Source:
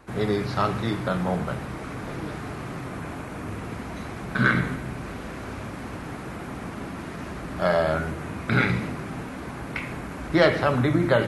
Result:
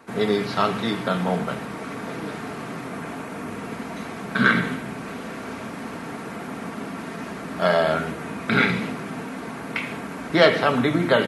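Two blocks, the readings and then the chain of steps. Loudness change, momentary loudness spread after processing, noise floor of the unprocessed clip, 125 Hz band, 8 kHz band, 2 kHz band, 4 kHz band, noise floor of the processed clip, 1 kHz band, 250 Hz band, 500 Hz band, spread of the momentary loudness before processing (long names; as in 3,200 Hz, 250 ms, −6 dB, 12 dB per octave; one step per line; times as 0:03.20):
+2.5 dB, 14 LU, −36 dBFS, −3.0 dB, +3.0 dB, +3.5 dB, +6.5 dB, −35 dBFS, +3.0 dB, +2.0 dB, +2.5 dB, 14 LU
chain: high-pass filter 160 Hz 12 dB per octave
dynamic equaliser 3,200 Hz, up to +5 dB, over −47 dBFS, Q 2.1
comb filter 4.4 ms, depth 34%
level +2.5 dB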